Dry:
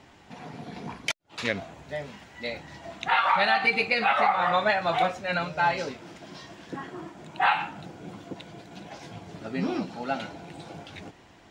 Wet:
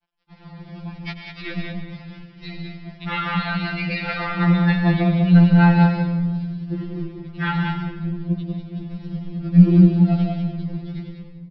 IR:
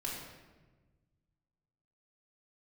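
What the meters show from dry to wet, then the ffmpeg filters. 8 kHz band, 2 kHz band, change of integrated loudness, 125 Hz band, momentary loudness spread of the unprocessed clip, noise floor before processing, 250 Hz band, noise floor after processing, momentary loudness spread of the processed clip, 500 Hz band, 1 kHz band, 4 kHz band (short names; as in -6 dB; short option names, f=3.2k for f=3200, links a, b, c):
n/a, -1.0 dB, +7.0 dB, +23.5 dB, 21 LU, -54 dBFS, +18.5 dB, -44 dBFS, 21 LU, -0.5 dB, -3.5 dB, -1.5 dB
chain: -filter_complex "[0:a]equalizer=f=85:t=o:w=2.1:g=6.5,aecho=1:1:145.8|192.4:0.282|0.562,aresample=11025,aeval=exprs='sgn(val(0))*max(abs(val(0))-0.00708,0)':c=same,aresample=44100,asubboost=boost=12:cutoff=210,asplit=2[a][b];[1:a]atrim=start_sample=2205,adelay=93[c];[b][c]afir=irnorm=-1:irlink=0,volume=-9dB[d];[a][d]amix=inputs=2:normalize=0,afftfilt=real='re*2.83*eq(mod(b,8),0)':imag='im*2.83*eq(mod(b,8),0)':win_size=2048:overlap=0.75"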